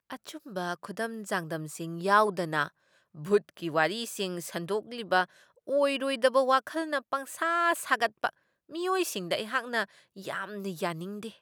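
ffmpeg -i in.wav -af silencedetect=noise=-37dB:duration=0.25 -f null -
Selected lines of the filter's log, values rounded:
silence_start: 2.68
silence_end: 3.20 | silence_duration: 0.52
silence_start: 5.24
silence_end: 5.69 | silence_duration: 0.44
silence_start: 8.29
silence_end: 8.73 | silence_duration: 0.44
silence_start: 9.84
silence_end: 10.18 | silence_duration: 0.34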